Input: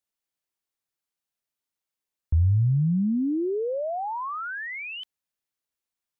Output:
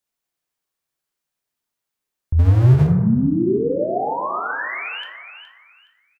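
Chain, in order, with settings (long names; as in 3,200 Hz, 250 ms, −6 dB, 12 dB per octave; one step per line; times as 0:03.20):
repeating echo 418 ms, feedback 25%, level −10.5 dB
0:02.39–0:02.87: power curve on the samples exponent 0.5
dense smooth reverb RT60 1.2 s, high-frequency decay 0.3×, DRR 1.5 dB
every ending faded ahead of time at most 140 dB per second
level +4 dB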